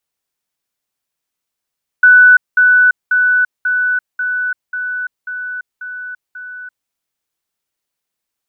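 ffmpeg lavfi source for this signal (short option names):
-f lavfi -i "aevalsrc='pow(10,(-3-3*floor(t/0.54))/20)*sin(2*PI*1490*t)*clip(min(mod(t,0.54),0.34-mod(t,0.54))/0.005,0,1)':d=4.86:s=44100"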